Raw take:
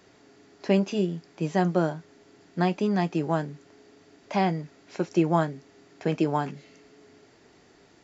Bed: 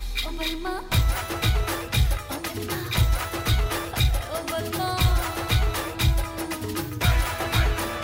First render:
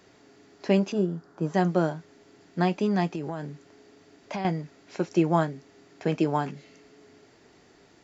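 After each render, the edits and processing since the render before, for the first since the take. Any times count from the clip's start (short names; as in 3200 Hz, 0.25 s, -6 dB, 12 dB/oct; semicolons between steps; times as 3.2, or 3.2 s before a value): 0.92–1.54 resonant high shelf 1800 Hz -8 dB, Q 3; 3.07–4.45 compressor, threshold -28 dBFS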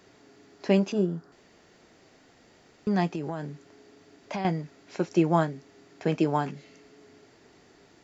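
1.32–2.87 room tone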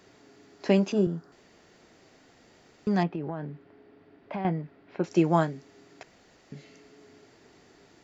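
0.65–1.07 three-band squash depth 40%; 3.03–5.04 air absorption 410 m; 6.03–6.52 room tone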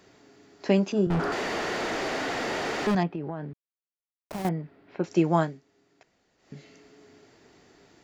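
1.1–2.95 overdrive pedal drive 45 dB, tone 1600 Hz, clips at -17.5 dBFS; 3.53–4.49 level-crossing sampler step -33 dBFS; 5.44–6.54 dip -11.5 dB, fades 0.17 s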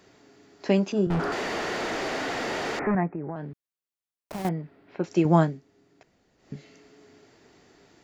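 2.79–3.36 steep low-pass 2300 Hz 72 dB/oct; 5.25–6.56 low shelf 420 Hz +7.5 dB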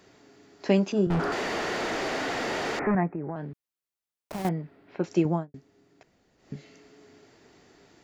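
5.1–5.54 studio fade out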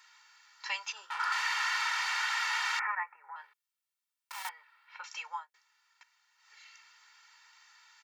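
elliptic high-pass 1000 Hz, stop band 70 dB; comb 2.2 ms, depth 84%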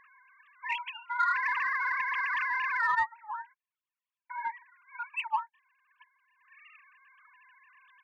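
sine-wave speech; in parallel at -5 dB: soft clip -28.5 dBFS, distortion -13 dB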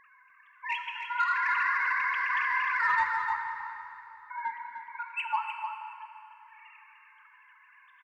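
on a send: echo 0.302 s -7.5 dB; on the sum: plate-style reverb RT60 3.1 s, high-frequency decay 0.8×, DRR 4 dB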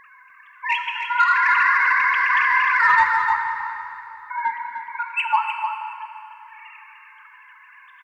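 gain +10.5 dB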